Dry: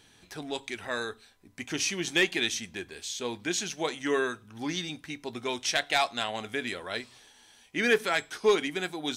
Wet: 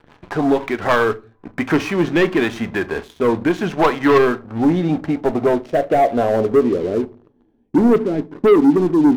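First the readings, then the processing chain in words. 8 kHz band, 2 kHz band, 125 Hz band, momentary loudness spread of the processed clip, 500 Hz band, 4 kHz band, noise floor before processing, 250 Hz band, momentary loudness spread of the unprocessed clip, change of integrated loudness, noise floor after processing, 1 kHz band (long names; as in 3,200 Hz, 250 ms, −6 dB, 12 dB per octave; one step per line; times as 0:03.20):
can't be measured, +5.5 dB, +19.0 dB, 9 LU, +15.0 dB, −3.0 dB, −59 dBFS, +19.5 dB, 13 LU, +12.5 dB, −58 dBFS, +13.5 dB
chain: high-shelf EQ 3,600 Hz +5 dB
mains-hum notches 60/120 Hz
rotating-speaker cabinet horn 6 Hz, later 0.85 Hz, at 0:00.35
in parallel at 0 dB: downward compressor 12 to 1, threshold −41 dBFS, peak gain reduction 22.5 dB
on the sum: low-pass filter sweep 1,100 Hz → 310 Hz, 0:03.99–0:07.52
leveller curve on the samples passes 3
rectangular room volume 170 cubic metres, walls furnished, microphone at 0.37 metres
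level +6.5 dB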